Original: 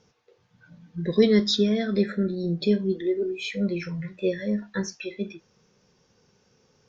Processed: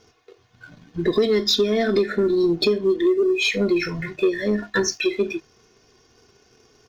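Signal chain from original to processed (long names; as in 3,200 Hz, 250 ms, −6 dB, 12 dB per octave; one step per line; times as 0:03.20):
mains-hum notches 50/100/150 Hz
comb filter 2.8 ms, depth 75%
downward compressor 6 to 1, threshold −27 dBFS, peak gain reduction 14 dB
leveller curve on the samples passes 1
level +8 dB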